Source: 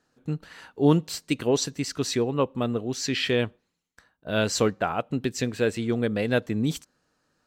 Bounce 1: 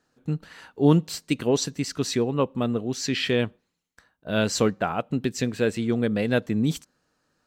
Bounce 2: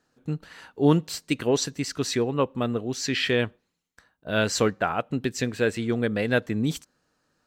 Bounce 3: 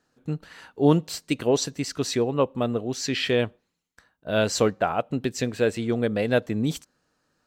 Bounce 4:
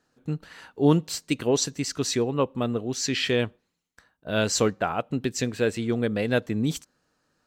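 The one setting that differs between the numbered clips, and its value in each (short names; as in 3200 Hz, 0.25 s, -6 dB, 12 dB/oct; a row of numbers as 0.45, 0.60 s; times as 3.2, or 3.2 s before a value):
dynamic EQ, frequency: 190, 1700, 630, 6700 Hz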